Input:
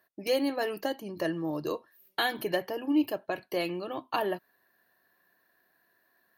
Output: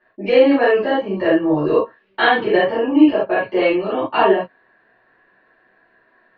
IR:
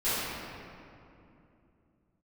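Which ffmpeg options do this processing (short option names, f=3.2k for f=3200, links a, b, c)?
-filter_complex "[0:a]lowpass=f=2.9k:w=0.5412,lowpass=f=2.9k:w=1.3066[a];[1:a]atrim=start_sample=2205,afade=t=out:st=0.14:d=0.01,atrim=end_sample=6615[b];[a][b]afir=irnorm=-1:irlink=0,volume=7dB"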